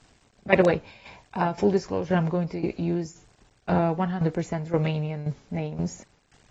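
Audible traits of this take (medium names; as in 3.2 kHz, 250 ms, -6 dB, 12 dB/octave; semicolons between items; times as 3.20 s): a quantiser's noise floor 10-bit, dither none; tremolo saw down 1.9 Hz, depth 75%; AAC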